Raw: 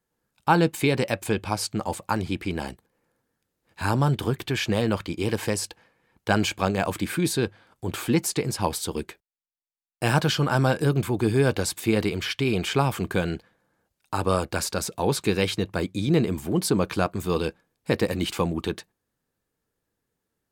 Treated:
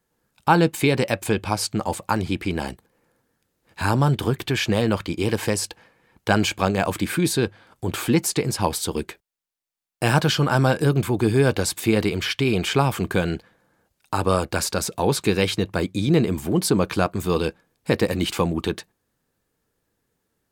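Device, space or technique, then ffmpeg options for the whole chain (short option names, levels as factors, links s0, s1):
parallel compression: -filter_complex "[0:a]asplit=2[s0][s1];[s1]acompressor=threshold=0.0178:ratio=6,volume=0.631[s2];[s0][s2]amix=inputs=2:normalize=0,volume=1.26"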